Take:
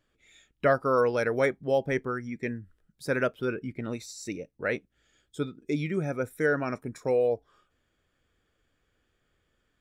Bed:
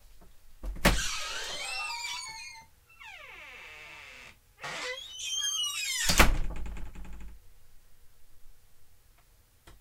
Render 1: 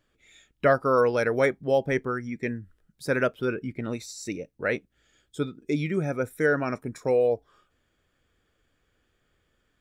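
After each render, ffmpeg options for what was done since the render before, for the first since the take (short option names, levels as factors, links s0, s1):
-af "volume=1.33"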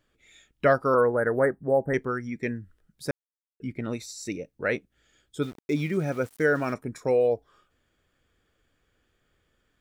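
-filter_complex "[0:a]asettb=1/sr,asplit=3[s0][s1][s2];[s0]atrim=end=0.944[s3];[s1]atrim=start=0.94:end=1.94,asetpts=PTS-STARTPTS,afade=t=in:d=0.004:c=qsin,afade=t=out:st=0.996:d=0.004:c=qsin,asuperstop=centerf=4000:order=20:qfactor=0.68[s4];[s2]atrim=start=1.936[s5];[s3][s4]acrossfade=d=0.004:c1=hsin:c2=qsin[s6];[s6][s5]acrossfade=d=0.004:c1=qsin:c2=hsin,asettb=1/sr,asplit=3[s7][s8][s9];[s7]atrim=end=5.424[s10];[s8]atrim=start=5.42:end=6.74,asetpts=PTS-STARTPTS,afade=t=in:d=0.004:c=qsin,afade=t=out:st=1.316:d=0.004:c=qsin,aeval=exprs='val(0)*gte(abs(val(0)),0.00708)':c=same[s11];[s9]atrim=start=6.736[s12];[s10][s11]acrossfade=d=0.004:c1=hsin:c2=qsin[s13];[s13][s12]acrossfade=d=0.004:c1=qsin:c2=hsin,asplit=3[s14][s15][s16];[s14]atrim=end=3.11,asetpts=PTS-STARTPTS,afade=t=out:st=3.106:d=0.004:c=hsin[s17];[s15]atrim=start=3.11:end=3.6,asetpts=PTS-STARTPTS,volume=0[s18];[s16]atrim=start=3.6,asetpts=PTS-STARTPTS,afade=t=in:d=0.004:c=hsin[s19];[s17][s18][s19]concat=n=3:v=0:a=1"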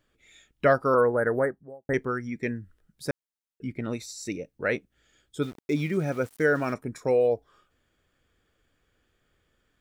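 -filter_complex "[0:a]asplit=2[s0][s1];[s0]atrim=end=1.89,asetpts=PTS-STARTPTS,afade=t=out:st=1.36:d=0.53:c=qua[s2];[s1]atrim=start=1.89,asetpts=PTS-STARTPTS,afade=t=in:d=0.004:c=hsin[s3];[s2][s3]concat=n=2:v=0:a=1"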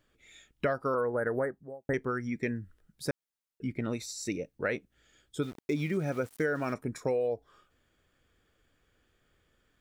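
-af "acompressor=threshold=0.0447:ratio=5"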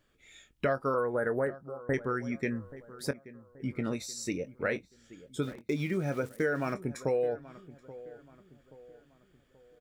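-filter_complex "[0:a]asplit=2[s0][s1];[s1]adelay=22,volume=0.251[s2];[s0][s2]amix=inputs=2:normalize=0,asplit=2[s3][s4];[s4]adelay=829,lowpass=f=1800:p=1,volume=0.141,asplit=2[s5][s6];[s6]adelay=829,lowpass=f=1800:p=1,volume=0.44,asplit=2[s7][s8];[s8]adelay=829,lowpass=f=1800:p=1,volume=0.44,asplit=2[s9][s10];[s10]adelay=829,lowpass=f=1800:p=1,volume=0.44[s11];[s3][s5][s7][s9][s11]amix=inputs=5:normalize=0"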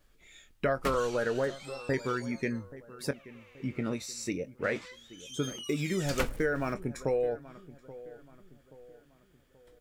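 -filter_complex "[1:a]volume=0.237[s0];[0:a][s0]amix=inputs=2:normalize=0"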